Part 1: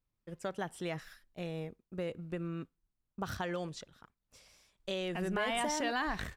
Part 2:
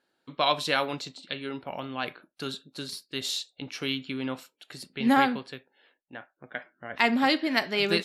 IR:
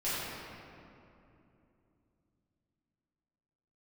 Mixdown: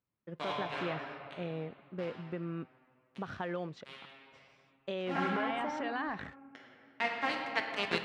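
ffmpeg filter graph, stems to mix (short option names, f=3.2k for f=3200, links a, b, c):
-filter_complex "[0:a]alimiter=level_in=3.5dB:limit=-24dB:level=0:latency=1:release=264,volume=-3.5dB,volume=1.5dB,asplit=2[a][b];[1:a]lowshelf=f=410:g=-7,aeval=exprs='val(0)*gte(abs(val(0)),0.0841)':c=same,volume=-0.5dB,asplit=2[c][d];[d]volume=-14.5dB[e];[b]apad=whole_len=354811[f];[c][f]sidechaincompress=threshold=-53dB:ratio=8:attack=24:release=1320[g];[2:a]atrim=start_sample=2205[h];[e][h]afir=irnorm=-1:irlink=0[i];[a][g][i]amix=inputs=3:normalize=0,highpass=130,lowpass=2.5k"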